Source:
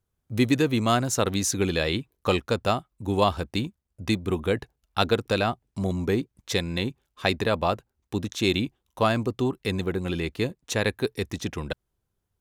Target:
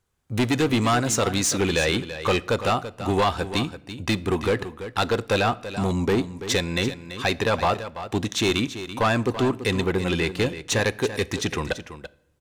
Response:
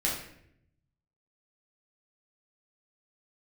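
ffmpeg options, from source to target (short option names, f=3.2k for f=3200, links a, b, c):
-filter_complex "[0:a]equalizer=f=8k:t=o:w=0.59:g=4,bandreject=f=630:w=13,asplit=2[a][b];[b]alimiter=limit=-14dB:level=0:latency=1:release=347,volume=2dB[c];[a][c]amix=inputs=2:normalize=0,asoftclip=type=hard:threshold=-14.5dB,asplit=2[d][e];[e]highpass=f=720:p=1,volume=6dB,asoftclip=type=tanh:threshold=-14.5dB[f];[d][f]amix=inputs=2:normalize=0,lowpass=f=4.8k:p=1,volume=-6dB,aecho=1:1:335:0.251,asplit=2[g][h];[1:a]atrim=start_sample=2205[i];[h][i]afir=irnorm=-1:irlink=0,volume=-24.5dB[j];[g][j]amix=inputs=2:normalize=0"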